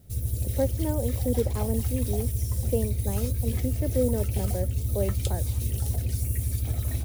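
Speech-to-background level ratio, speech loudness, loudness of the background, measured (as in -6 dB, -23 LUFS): -3.0 dB, -32.0 LUFS, -29.0 LUFS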